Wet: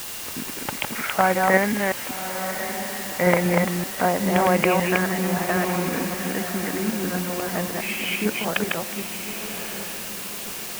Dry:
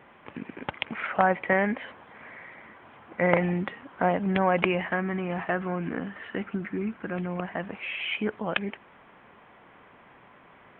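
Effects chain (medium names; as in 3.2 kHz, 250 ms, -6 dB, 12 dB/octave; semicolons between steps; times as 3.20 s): chunks repeated in reverse 192 ms, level -2 dB; whistle 2.8 kHz -49 dBFS; echo that smears into a reverb 1151 ms, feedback 47%, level -10 dB; word length cut 6-bit, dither triangular; trim +2.5 dB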